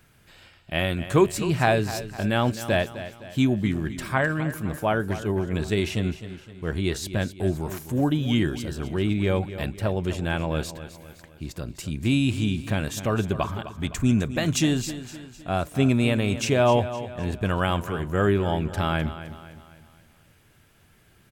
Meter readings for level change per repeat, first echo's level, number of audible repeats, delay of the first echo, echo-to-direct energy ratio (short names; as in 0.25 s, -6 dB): -6.5 dB, -13.0 dB, 4, 0.257 s, -12.0 dB